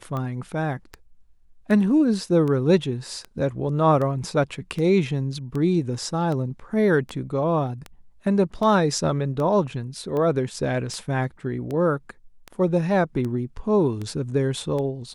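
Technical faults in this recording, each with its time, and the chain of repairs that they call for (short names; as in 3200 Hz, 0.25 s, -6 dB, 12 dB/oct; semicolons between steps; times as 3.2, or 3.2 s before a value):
tick 78 rpm -19 dBFS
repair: de-click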